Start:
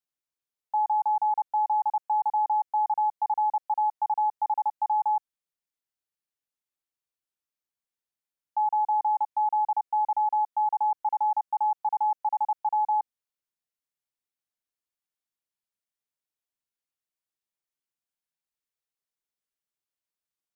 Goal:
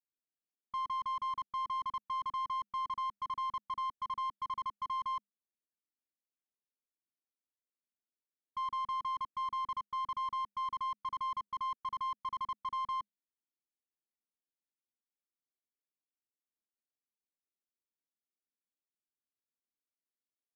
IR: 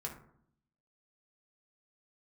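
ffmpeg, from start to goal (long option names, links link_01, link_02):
-af "equalizer=frequency=650:width_type=o:width=1.4:gain=-13.5,afreqshift=200,aeval=exprs='0.0316*(cos(1*acos(clip(val(0)/0.0316,-1,1)))-cos(1*PI/2))+0.00316*(cos(2*acos(clip(val(0)/0.0316,-1,1)))-cos(2*PI/2))+0.000398*(cos(5*acos(clip(val(0)/0.0316,-1,1)))-cos(5*PI/2))+0.00224*(cos(8*acos(clip(val(0)/0.0316,-1,1)))-cos(8*PI/2))':channel_layout=same,adynamicsmooth=sensitivity=3:basefreq=690"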